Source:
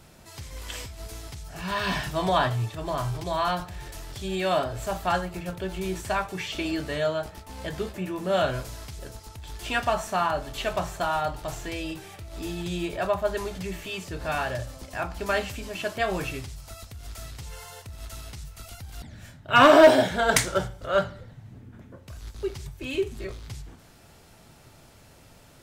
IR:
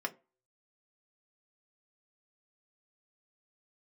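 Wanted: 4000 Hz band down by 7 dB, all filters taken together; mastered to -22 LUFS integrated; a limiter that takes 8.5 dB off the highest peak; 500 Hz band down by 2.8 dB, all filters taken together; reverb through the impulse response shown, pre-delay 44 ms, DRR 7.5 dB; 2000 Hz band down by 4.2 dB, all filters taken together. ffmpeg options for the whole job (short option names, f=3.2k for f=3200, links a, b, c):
-filter_complex "[0:a]equalizer=f=500:t=o:g=-3.5,equalizer=f=2k:t=o:g=-4,equalizer=f=4k:t=o:g=-8,alimiter=limit=-17dB:level=0:latency=1,asplit=2[a][b];[1:a]atrim=start_sample=2205,adelay=44[c];[b][c]afir=irnorm=-1:irlink=0,volume=-11dB[d];[a][d]amix=inputs=2:normalize=0,volume=9dB"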